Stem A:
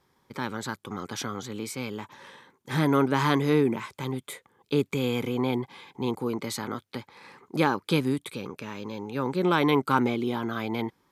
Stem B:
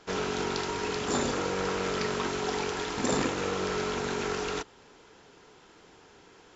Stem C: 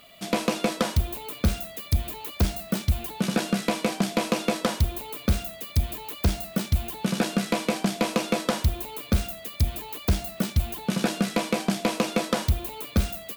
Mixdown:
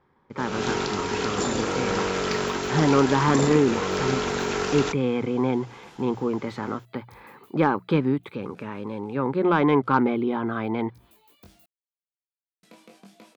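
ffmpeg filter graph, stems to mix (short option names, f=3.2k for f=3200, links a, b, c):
-filter_complex "[0:a]lowpass=1.9k,bandreject=f=60:t=h:w=6,bandreject=f=120:t=h:w=6,bandreject=f=180:t=h:w=6,aeval=exprs='0.355*(cos(1*acos(clip(val(0)/0.355,-1,1)))-cos(1*PI/2))+0.0126*(cos(5*acos(clip(val(0)/0.355,-1,1)))-cos(5*PI/2))':c=same,volume=2.5dB,asplit=2[a][b];[1:a]alimiter=limit=-19.5dB:level=0:latency=1:release=411,dynaudnorm=f=170:g=3:m=12dB,adelay=300,volume=-7dB[c];[2:a]highpass=98,acompressor=threshold=-23dB:ratio=6,flanger=delay=17.5:depth=4.7:speed=0.83,adelay=1350,volume=-19dB,asplit=3[d][e][f];[d]atrim=end=11.66,asetpts=PTS-STARTPTS,afade=t=out:st=11.656:d=0.004:c=hsin[g];[e]atrim=start=11.66:end=12.63,asetpts=PTS-STARTPTS,volume=0[h];[f]atrim=start=12.63,asetpts=PTS-STARTPTS,afade=t=in:d=0.004:c=hsin[i];[g][h][i]concat=n=3:v=0:a=1[j];[b]apad=whole_len=648778[k];[j][k]sidechaincompress=threshold=-46dB:ratio=3:attack=31:release=143[l];[a][c][l]amix=inputs=3:normalize=0"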